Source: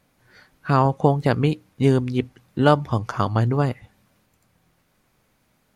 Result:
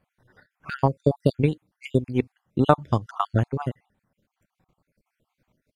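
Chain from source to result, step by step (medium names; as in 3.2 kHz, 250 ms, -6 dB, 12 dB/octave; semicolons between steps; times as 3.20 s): random holes in the spectrogram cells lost 49%; transient shaper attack +6 dB, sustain -5 dB; tape noise reduction on one side only decoder only; trim -4 dB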